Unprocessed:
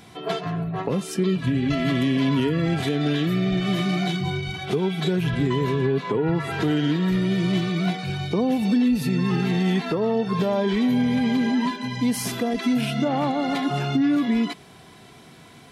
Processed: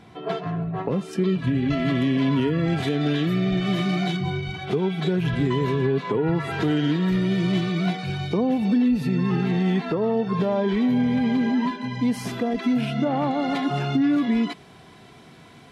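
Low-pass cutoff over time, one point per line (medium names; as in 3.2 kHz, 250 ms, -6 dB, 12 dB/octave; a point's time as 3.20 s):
low-pass 6 dB/octave
1.8 kHz
from 1.13 s 3.1 kHz
from 2.68 s 5.5 kHz
from 4.17 s 3 kHz
from 5.25 s 6 kHz
from 8.37 s 2.3 kHz
from 13.31 s 4.6 kHz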